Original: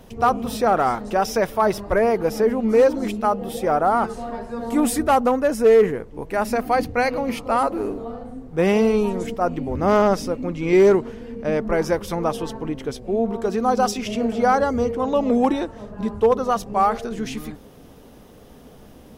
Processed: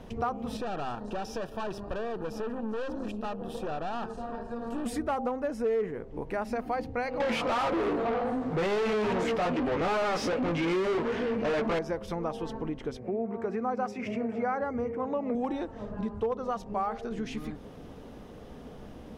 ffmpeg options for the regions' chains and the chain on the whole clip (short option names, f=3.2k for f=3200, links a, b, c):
-filter_complex "[0:a]asettb=1/sr,asplit=3[a][b][c];[a]atrim=end=0.574[d];[b]atrim=start=0.57:end=4.86,asetpts=PTS-STARTPTS,afade=t=in:d=0.004:c=qsin,afade=t=out:st=4.286:d=0.004:c=qsin,aeval=exprs='(tanh(15.8*val(0)+0.65)-tanh(0.65))/15.8':c=same,asuperstop=centerf=2100:order=8:qfactor=4.6[e];[c]atrim=start=4.856[f];[d][e]acrossfade=d=0.004:c1=hsin:c2=qsin[g];[g][f]acrossfade=d=0.004:c1=qsin:c2=hsin,asettb=1/sr,asplit=3[h][i][j];[h]atrim=end=7.204[k];[i]atrim=start=7.2:end=11.79,asetpts=PTS-STARTPTS,afade=t=in:d=0.004:c=qsin,afade=t=out:st=4.586:d=0.004:c=qsin,flanger=delay=16:depth=2.4:speed=2.5,asplit=2[l][m];[m]highpass=f=720:p=1,volume=36dB,asoftclip=type=tanh:threshold=-8.5dB[n];[l][n]amix=inputs=2:normalize=0,lowpass=f=4.7k:p=1,volume=-6dB[o];[j]atrim=start=11.786[p];[k][o]acrossfade=d=0.004:c1=hsin:c2=qsin[q];[q][p]acrossfade=d=0.004:c1=qsin:c2=hsin,asettb=1/sr,asplit=3[r][s][t];[r]atrim=end=12.974[u];[s]atrim=start=12.97:end=15.35,asetpts=PTS-STARTPTS,afade=t=in:d=0.004:c=qsin,afade=t=out:st=2.376:d=0.004:c=qsin,highpass=f=81:w=0.5412,highpass=f=81:w=1.3066,highshelf=f=2.7k:t=q:w=3:g=-6[v];[t]atrim=start=15.346[w];[u][v]acrossfade=d=0.004:c1=hsin:c2=qsin[x];[x][w]acrossfade=d=0.004:c1=qsin:c2=hsin,aemphasis=mode=reproduction:type=50fm,bandreject=f=132.2:t=h:w=4,bandreject=f=264.4:t=h:w=4,bandreject=f=396.6:t=h:w=4,bandreject=f=528.8:t=h:w=4,bandreject=f=661:t=h:w=4,bandreject=f=793.2:t=h:w=4,bandreject=f=925.4:t=h:w=4,acompressor=threshold=-34dB:ratio=2.5"